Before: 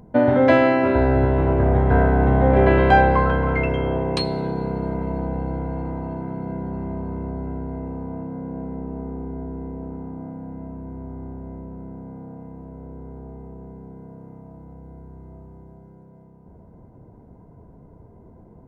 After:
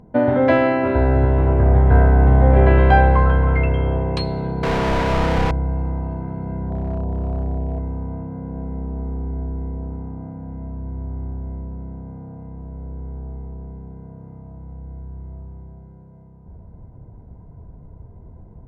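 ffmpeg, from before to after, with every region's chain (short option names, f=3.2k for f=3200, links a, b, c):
-filter_complex "[0:a]asettb=1/sr,asplit=3[a][b][c];[a]atrim=end=4.634[d];[b]atrim=start=4.63:end=5.51,asetpts=PTS-STARTPTS,afade=t=in:d=0.004:c=qsin,afade=t=out:st=0.876:d=0.004:c=qsin,aeval=exprs='val(0)*gte(abs(val(0)),0.00398)':c=same,asplit=2[e][f];[f]highpass=f=720:p=1,volume=42dB,asoftclip=type=tanh:threshold=-13.5dB[g];[e][g]amix=inputs=2:normalize=0,lowpass=f=4.2k:p=1,volume=-6dB[h];[c]atrim=start=5.506[i];[d][h]acrossfade=d=0.004:c1=hsin:c2=qsin[j];[j][i]acrossfade=d=0.004:c1=qsin:c2=hsin,asettb=1/sr,asplit=3[k][l][m];[k]atrim=end=6.704[n];[l]atrim=start=6.7:end=7.79,asetpts=PTS-STARTPTS,afade=t=in:d=0.004:c=qsin,afade=t=out:st=1.086:d=0.004:c=qsin,lowpass=f=700:t=q:w=2.3,asoftclip=type=hard:threshold=-21dB[o];[m]atrim=start=7.786[p];[n][o]acrossfade=d=0.004:c1=hsin:c2=qsin[q];[q][p]acrossfade=d=0.004:c1=qsin:c2=hsin,lowpass=f=3.8k:p=1,asubboost=boost=3.5:cutoff=130"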